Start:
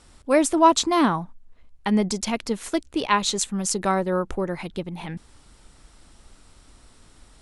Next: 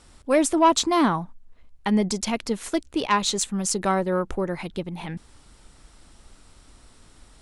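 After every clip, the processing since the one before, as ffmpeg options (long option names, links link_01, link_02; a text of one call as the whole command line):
ffmpeg -i in.wav -af "acontrast=71,volume=-6.5dB" out.wav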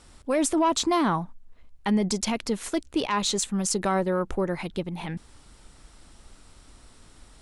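ffmpeg -i in.wav -af "alimiter=limit=-16dB:level=0:latency=1:release=18" out.wav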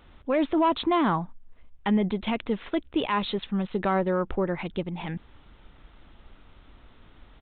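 ffmpeg -i in.wav -af "aresample=8000,aresample=44100" out.wav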